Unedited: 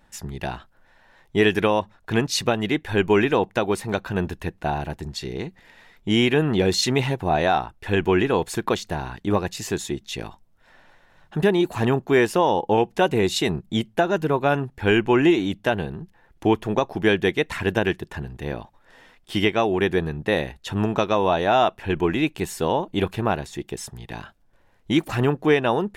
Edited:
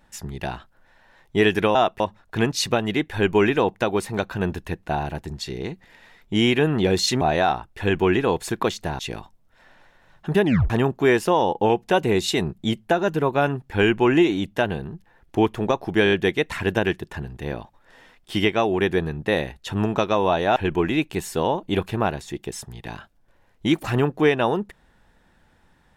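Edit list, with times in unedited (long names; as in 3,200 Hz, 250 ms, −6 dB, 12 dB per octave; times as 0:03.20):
0:06.96–0:07.27: remove
0:09.05–0:10.07: remove
0:11.52: tape stop 0.26 s
0:17.12: stutter 0.02 s, 5 plays
0:21.56–0:21.81: move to 0:01.75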